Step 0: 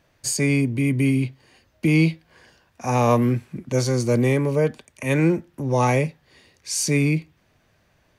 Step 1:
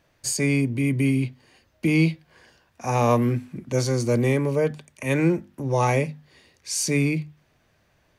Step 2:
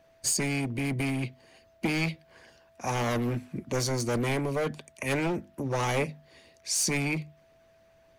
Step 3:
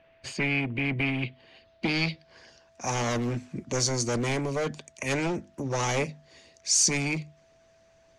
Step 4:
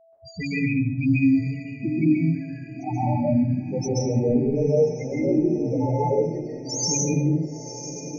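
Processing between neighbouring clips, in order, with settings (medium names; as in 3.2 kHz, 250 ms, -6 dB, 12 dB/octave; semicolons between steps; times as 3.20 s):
hum notches 50/100/150/200/250 Hz; trim -1.5 dB
whistle 660 Hz -53 dBFS; hard clipper -20.5 dBFS, distortion -10 dB; harmonic-percussive split harmonic -8 dB; trim +1.5 dB
low-pass sweep 2.7 kHz -> 6.7 kHz, 1.00–2.81 s
loudest bins only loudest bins 2; echo that smears into a reverb 986 ms, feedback 53%, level -11.5 dB; plate-style reverb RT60 0.77 s, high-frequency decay 0.6×, pre-delay 120 ms, DRR -7 dB; trim +6.5 dB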